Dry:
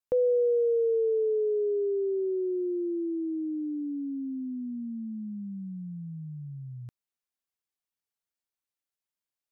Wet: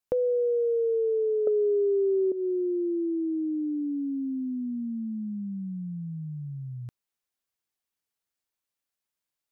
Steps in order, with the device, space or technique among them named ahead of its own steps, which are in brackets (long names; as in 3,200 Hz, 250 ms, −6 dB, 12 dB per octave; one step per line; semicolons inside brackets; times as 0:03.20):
0:01.47–0:02.32: flat-topped bell 540 Hz +14.5 dB 1.3 octaves
serial compression, peaks first (downward compressor 5 to 1, threshold −23 dBFS, peak gain reduction 10.5 dB; downward compressor 2 to 1, threshold −29 dBFS, peak gain reduction 5.5 dB)
level +3.5 dB